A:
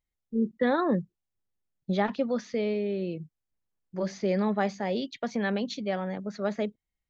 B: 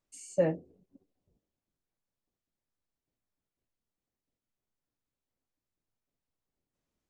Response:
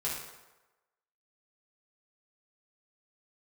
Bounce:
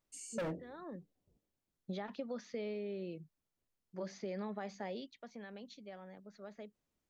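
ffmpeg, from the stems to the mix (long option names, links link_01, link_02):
-filter_complex "[0:a]lowshelf=frequency=130:gain=-8.5,alimiter=limit=-21dB:level=0:latency=1:release=121,volume=-9dB,afade=type=out:start_time=4.86:duration=0.29:silence=0.354813[link_01];[1:a]asoftclip=type=hard:threshold=-29.5dB,volume=-0.5dB,asplit=2[link_02][link_03];[link_03]apad=whole_len=312899[link_04];[link_01][link_04]sidechaincompress=threshold=-49dB:ratio=4:attack=16:release=790[link_05];[link_05][link_02]amix=inputs=2:normalize=0,acompressor=threshold=-36dB:ratio=6"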